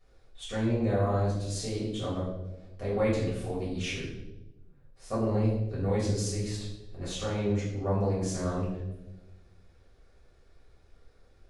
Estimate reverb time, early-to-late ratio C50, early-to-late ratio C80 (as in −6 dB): 1.0 s, 3.0 dB, 5.5 dB